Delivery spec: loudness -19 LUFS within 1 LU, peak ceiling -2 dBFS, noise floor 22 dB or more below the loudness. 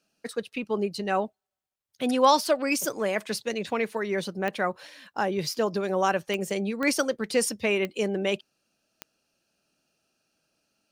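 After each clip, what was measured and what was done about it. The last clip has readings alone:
clicks found 5; loudness -27.0 LUFS; peak level -8.0 dBFS; loudness target -19.0 LUFS
-> de-click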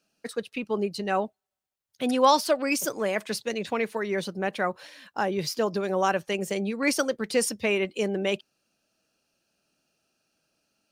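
clicks found 0; loudness -27.0 LUFS; peak level -8.0 dBFS; loudness target -19.0 LUFS
-> trim +8 dB; peak limiter -2 dBFS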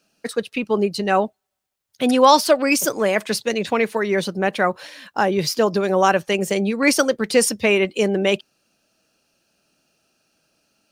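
loudness -19.5 LUFS; peak level -2.0 dBFS; noise floor -78 dBFS

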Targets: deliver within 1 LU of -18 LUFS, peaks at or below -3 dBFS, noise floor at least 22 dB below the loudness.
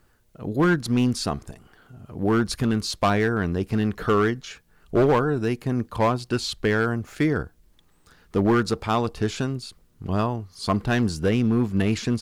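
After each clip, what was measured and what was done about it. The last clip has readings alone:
clipped samples 1.7%; clipping level -14.0 dBFS; loudness -24.0 LUFS; peak level -14.0 dBFS; loudness target -18.0 LUFS
-> clip repair -14 dBFS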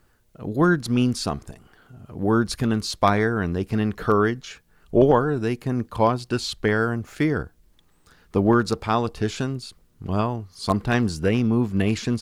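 clipped samples 0.0%; loudness -23.0 LUFS; peak level -5.0 dBFS; loudness target -18.0 LUFS
-> trim +5 dB; peak limiter -3 dBFS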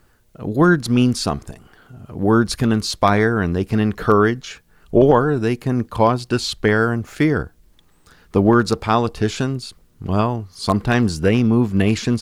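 loudness -18.0 LUFS; peak level -3.0 dBFS; noise floor -56 dBFS

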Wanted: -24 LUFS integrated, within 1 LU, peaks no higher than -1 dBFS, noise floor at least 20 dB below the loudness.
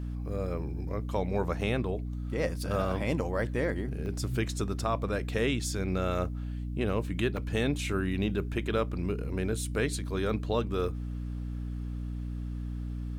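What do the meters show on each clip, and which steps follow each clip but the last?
dropouts 2; longest dropout 1.3 ms; hum 60 Hz; highest harmonic 300 Hz; hum level -33 dBFS; loudness -32.0 LUFS; peak level -16.0 dBFS; loudness target -24.0 LUFS
-> interpolate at 4.06/7.37 s, 1.3 ms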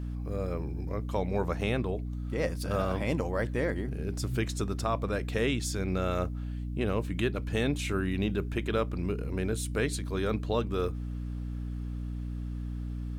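dropouts 0; hum 60 Hz; highest harmonic 300 Hz; hum level -33 dBFS
-> hum notches 60/120/180/240/300 Hz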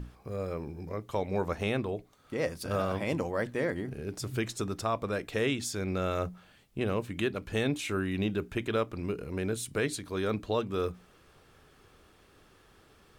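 hum not found; loudness -33.0 LUFS; peak level -17.0 dBFS; loudness target -24.0 LUFS
-> trim +9 dB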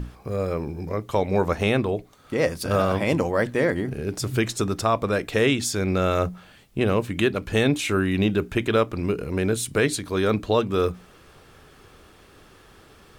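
loudness -24.0 LUFS; peak level -8.0 dBFS; noise floor -52 dBFS

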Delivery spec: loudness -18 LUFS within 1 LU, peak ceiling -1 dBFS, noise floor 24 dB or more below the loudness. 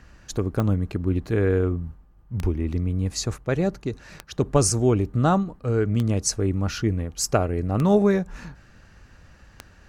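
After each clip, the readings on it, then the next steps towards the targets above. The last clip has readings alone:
clicks found 6; loudness -24.0 LUFS; peak level -6.0 dBFS; loudness target -18.0 LUFS
-> de-click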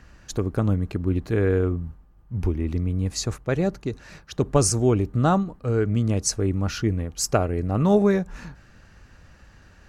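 clicks found 0; loudness -24.0 LUFS; peak level -6.0 dBFS; loudness target -18.0 LUFS
-> trim +6 dB; peak limiter -1 dBFS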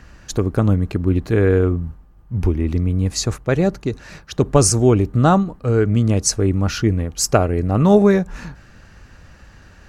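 loudness -18.0 LUFS; peak level -1.0 dBFS; noise floor -47 dBFS

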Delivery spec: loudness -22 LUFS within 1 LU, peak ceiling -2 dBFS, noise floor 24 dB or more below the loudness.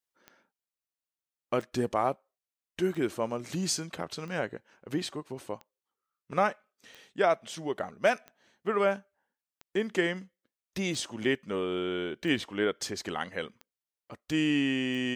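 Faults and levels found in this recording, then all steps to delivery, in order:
clicks found 12; loudness -31.0 LUFS; peak level -13.0 dBFS; loudness target -22.0 LUFS
-> de-click; trim +9 dB

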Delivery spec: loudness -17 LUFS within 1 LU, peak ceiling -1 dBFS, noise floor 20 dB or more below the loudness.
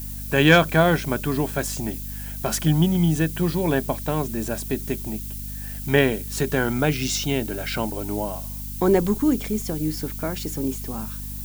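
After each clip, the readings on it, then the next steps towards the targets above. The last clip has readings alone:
hum 50 Hz; highest harmonic 250 Hz; hum level -32 dBFS; noise floor -33 dBFS; noise floor target -43 dBFS; loudness -23.0 LUFS; peak level -5.0 dBFS; loudness target -17.0 LUFS
-> de-hum 50 Hz, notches 5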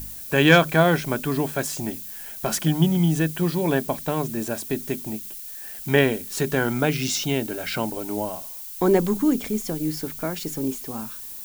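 hum not found; noise floor -37 dBFS; noise floor target -44 dBFS
-> noise reduction 7 dB, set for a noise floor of -37 dBFS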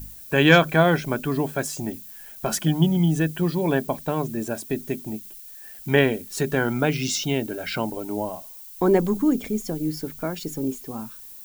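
noise floor -42 dBFS; noise floor target -44 dBFS
-> noise reduction 6 dB, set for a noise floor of -42 dBFS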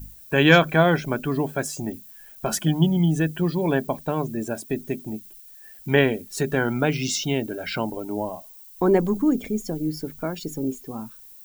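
noise floor -46 dBFS; loudness -23.5 LUFS; peak level -4.0 dBFS; loudness target -17.0 LUFS
-> trim +6.5 dB; peak limiter -1 dBFS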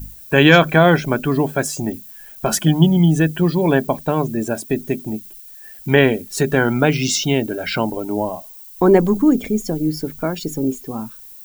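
loudness -17.5 LUFS; peak level -1.0 dBFS; noise floor -40 dBFS

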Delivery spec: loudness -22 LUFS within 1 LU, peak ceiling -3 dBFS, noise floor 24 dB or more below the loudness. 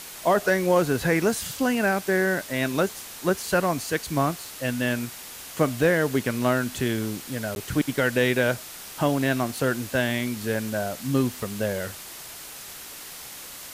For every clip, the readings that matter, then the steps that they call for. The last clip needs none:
dropouts 1; longest dropout 11 ms; noise floor -41 dBFS; noise floor target -49 dBFS; loudness -25.0 LUFS; peak level -9.5 dBFS; loudness target -22.0 LUFS
-> interpolate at 7.55 s, 11 ms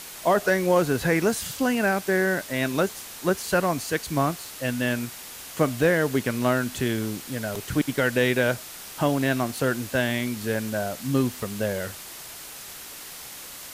dropouts 0; noise floor -41 dBFS; noise floor target -49 dBFS
-> noise reduction 8 dB, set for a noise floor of -41 dBFS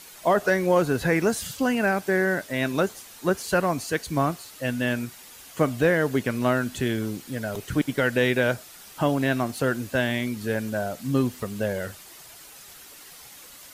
noise floor -46 dBFS; noise floor target -49 dBFS
-> noise reduction 6 dB, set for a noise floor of -46 dBFS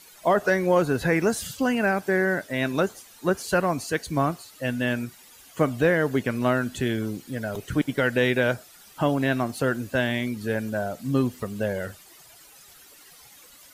noise floor -51 dBFS; loudness -25.0 LUFS; peak level -10.0 dBFS; loudness target -22.0 LUFS
-> trim +3 dB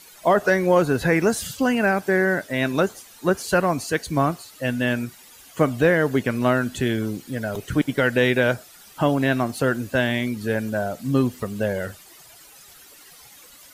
loudness -22.5 LUFS; peak level -7.0 dBFS; noise floor -48 dBFS

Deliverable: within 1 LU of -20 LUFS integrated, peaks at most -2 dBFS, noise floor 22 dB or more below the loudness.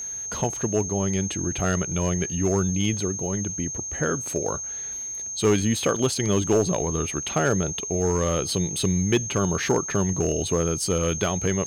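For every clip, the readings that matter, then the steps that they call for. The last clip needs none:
clipped samples 0.3%; clipping level -13.5 dBFS; steady tone 6.4 kHz; tone level -30 dBFS; loudness -24.5 LUFS; peak level -13.5 dBFS; loudness target -20.0 LUFS
-> clip repair -13.5 dBFS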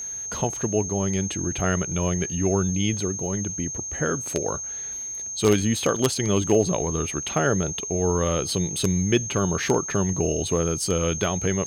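clipped samples 0.0%; steady tone 6.4 kHz; tone level -30 dBFS
-> band-stop 6.4 kHz, Q 30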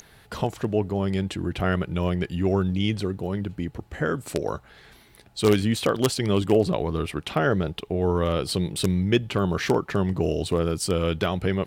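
steady tone not found; loudness -25.0 LUFS; peak level -4.0 dBFS; loudness target -20.0 LUFS
-> trim +5 dB; peak limiter -2 dBFS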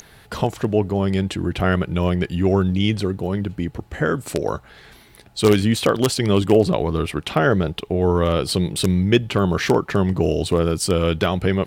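loudness -20.5 LUFS; peak level -2.0 dBFS; noise floor -49 dBFS

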